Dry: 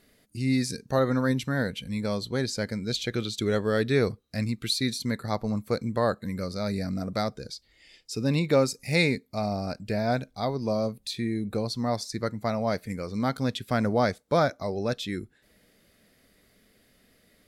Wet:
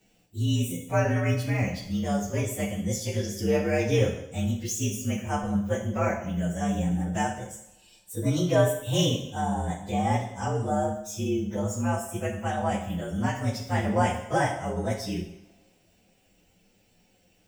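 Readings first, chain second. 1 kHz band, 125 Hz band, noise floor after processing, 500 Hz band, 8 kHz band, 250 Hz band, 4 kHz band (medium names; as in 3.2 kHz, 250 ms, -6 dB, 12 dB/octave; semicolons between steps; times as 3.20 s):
+2.5 dB, +3.0 dB, -64 dBFS, -1.0 dB, +4.5 dB, 0.0 dB, -3.0 dB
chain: frequency axis rescaled in octaves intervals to 116%; two-slope reverb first 0.72 s, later 2.6 s, from -27 dB, DRR 1.5 dB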